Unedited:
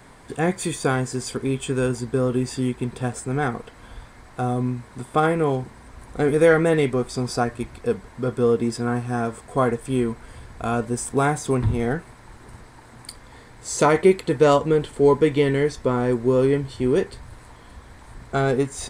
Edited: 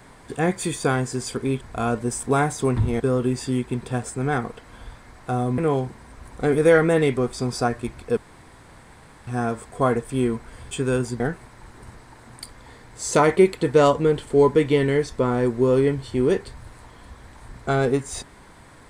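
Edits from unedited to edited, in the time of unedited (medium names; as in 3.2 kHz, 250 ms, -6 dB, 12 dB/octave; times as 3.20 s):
1.61–2.10 s: swap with 10.47–11.86 s
4.68–5.34 s: delete
7.93–9.03 s: room tone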